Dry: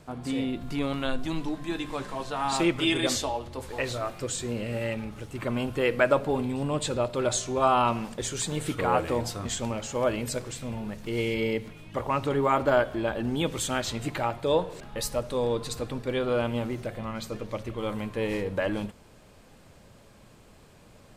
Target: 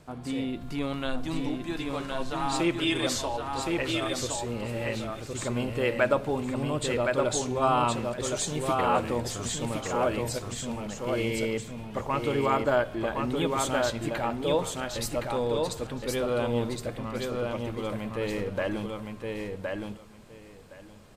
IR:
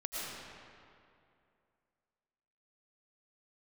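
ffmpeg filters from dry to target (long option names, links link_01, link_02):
-af "aecho=1:1:1066|2132|3198:0.668|0.107|0.0171,volume=-2dB"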